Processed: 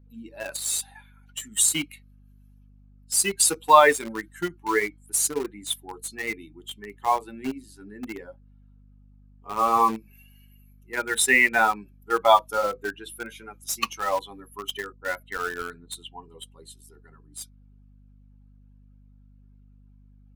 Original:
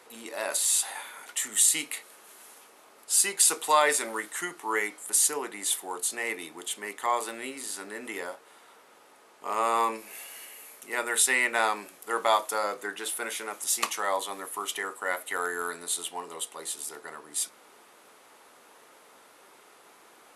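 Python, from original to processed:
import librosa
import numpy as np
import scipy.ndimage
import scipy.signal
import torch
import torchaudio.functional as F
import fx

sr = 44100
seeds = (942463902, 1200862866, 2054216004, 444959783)

p1 = fx.bin_expand(x, sr, power=2.0)
p2 = fx.env_lowpass(p1, sr, base_hz=320.0, full_db=-37.5, at=(14.92, 16.23))
p3 = fx.bass_treble(p2, sr, bass_db=11, treble_db=-6)
p4 = fx.quant_dither(p3, sr, seeds[0], bits=6, dither='none')
p5 = p3 + (p4 * librosa.db_to_amplitude(-8.5))
p6 = fx.add_hum(p5, sr, base_hz=50, snr_db=26)
y = p6 * librosa.db_to_amplitude(7.0)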